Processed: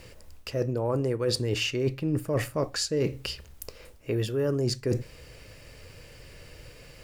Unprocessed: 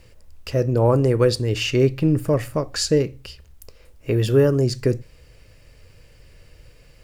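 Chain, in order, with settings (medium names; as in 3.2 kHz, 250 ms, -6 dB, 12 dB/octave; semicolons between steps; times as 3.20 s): bass shelf 87 Hz -9.5 dB; reverse; compression 16:1, threshold -29 dBFS, peak gain reduction 18 dB; reverse; trim +5.5 dB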